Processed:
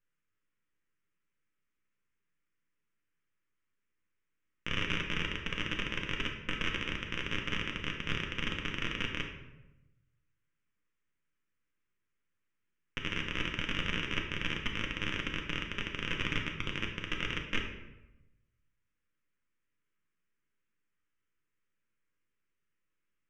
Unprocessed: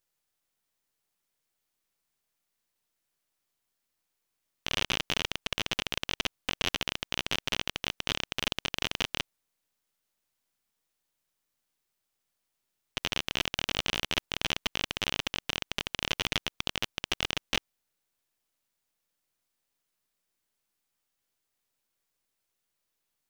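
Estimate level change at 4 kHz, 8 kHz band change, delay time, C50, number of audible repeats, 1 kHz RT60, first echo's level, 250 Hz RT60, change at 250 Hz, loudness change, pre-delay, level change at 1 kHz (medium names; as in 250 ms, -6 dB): -6.5 dB, -13.5 dB, no echo, 5.5 dB, no echo, 0.90 s, no echo, 1.2 s, +2.0 dB, -3.5 dB, 4 ms, -4.0 dB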